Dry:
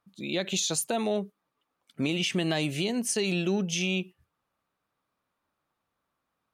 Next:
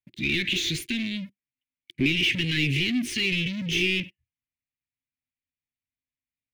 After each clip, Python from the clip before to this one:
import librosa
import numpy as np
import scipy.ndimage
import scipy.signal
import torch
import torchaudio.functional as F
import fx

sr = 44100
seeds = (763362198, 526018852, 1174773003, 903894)

y = scipy.signal.sosfilt(scipy.signal.cheby1(5, 1.0, [260.0, 1600.0], 'bandstop', fs=sr, output='sos'), x)
y = fx.leveller(y, sr, passes=5)
y = fx.curve_eq(y, sr, hz=(120.0, 200.0, 350.0, 560.0, 890.0, 1300.0, 2100.0, 3200.0, 7800.0), db=(0, -13, 11, -22, -23, -21, 2, -2, -18))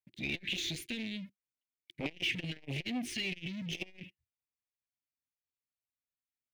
y = fx.transformer_sat(x, sr, knee_hz=680.0)
y = y * librosa.db_to_amplitude(-8.5)